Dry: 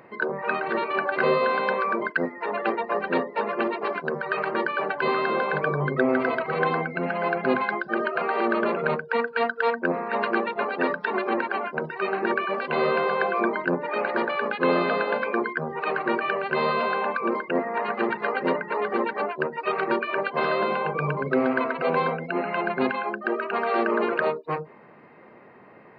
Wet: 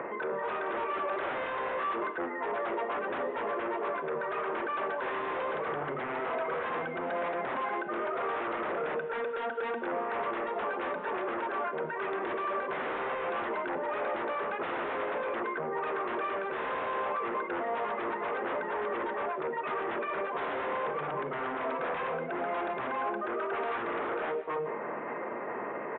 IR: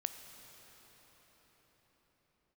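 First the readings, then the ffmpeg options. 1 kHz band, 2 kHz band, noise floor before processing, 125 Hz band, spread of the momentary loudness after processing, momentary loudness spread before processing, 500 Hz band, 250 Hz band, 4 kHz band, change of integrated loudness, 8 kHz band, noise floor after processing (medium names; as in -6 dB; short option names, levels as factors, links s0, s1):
-6.0 dB, -9.5 dB, -49 dBFS, -15.0 dB, 2 LU, 5 LU, -7.5 dB, -11.5 dB, -9.5 dB, -8.0 dB, no reading, -37 dBFS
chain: -filter_complex "[0:a]bandreject=f=770:w=20,aresample=16000,aeval=exprs='0.376*sin(PI/2*6.31*val(0)/0.376)':c=same,aresample=44100,lowshelf=f=69:g=-11,areverse,acompressor=threshold=0.0631:ratio=6,areverse,alimiter=level_in=1.88:limit=0.0631:level=0:latency=1:release=133,volume=0.531,acrossover=split=290 2100:gain=0.224 1 0.1[s0][s1][s2];[s0][s1][s2]amix=inputs=3:normalize=0[s3];[1:a]atrim=start_sample=2205,afade=t=out:st=0.27:d=0.01,atrim=end_sample=12348[s4];[s3][s4]afir=irnorm=-1:irlink=0,aresample=8000,aresample=44100,volume=1.58"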